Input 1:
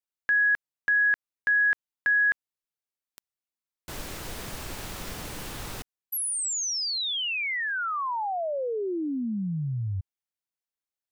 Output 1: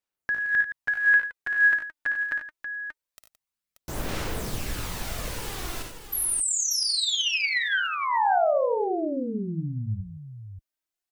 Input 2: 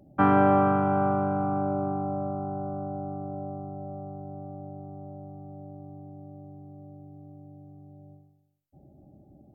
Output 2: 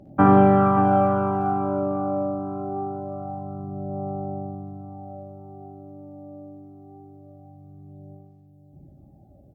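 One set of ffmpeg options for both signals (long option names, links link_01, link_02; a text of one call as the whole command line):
ffmpeg -i in.wav -af "aphaser=in_gain=1:out_gain=1:delay=3.4:decay=0.54:speed=0.24:type=sinusoidal,aecho=1:1:56|74|92|169|583:0.447|0.316|0.335|0.2|0.355" out.wav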